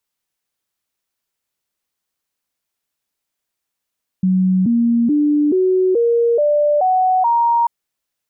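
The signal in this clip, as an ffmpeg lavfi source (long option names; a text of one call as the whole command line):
ffmpeg -f lavfi -i "aevalsrc='0.266*clip(min(mod(t,0.43),0.43-mod(t,0.43))/0.005,0,1)*sin(2*PI*186*pow(2,floor(t/0.43)/3)*mod(t,0.43))':duration=3.44:sample_rate=44100" out.wav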